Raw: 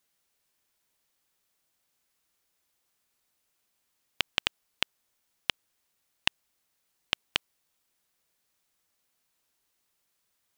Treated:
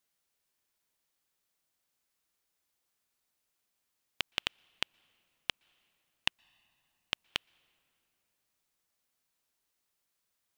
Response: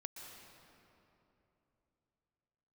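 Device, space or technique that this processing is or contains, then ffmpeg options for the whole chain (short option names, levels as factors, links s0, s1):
keyed gated reverb: -filter_complex "[0:a]asplit=3[s0][s1][s2];[1:a]atrim=start_sample=2205[s3];[s1][s3]afir=irnorm=-1:irlink=0[s4];[s2]apad=whole_len=466227[s5];[s4][s5]sidechaingate=range=0.0562:threshold=0.0501:ratio=16:detection=peak,volume=1.26[s6];[s0][s6]amix=inputs=2:normalize=0,volume=0.531"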